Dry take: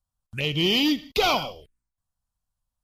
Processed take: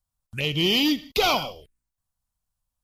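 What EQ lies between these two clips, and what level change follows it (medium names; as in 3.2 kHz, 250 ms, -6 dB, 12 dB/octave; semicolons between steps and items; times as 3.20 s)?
treble shelf 7.2 kHz +5 dB; 0.0 dB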